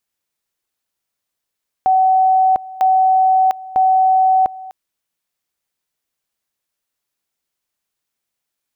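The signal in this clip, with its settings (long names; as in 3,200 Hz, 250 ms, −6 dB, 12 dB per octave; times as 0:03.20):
tone at two levels in turn 755 Hz −9.5 dBFS, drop 19.5 dB, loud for 0.70 s, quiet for 0.25 s, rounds 3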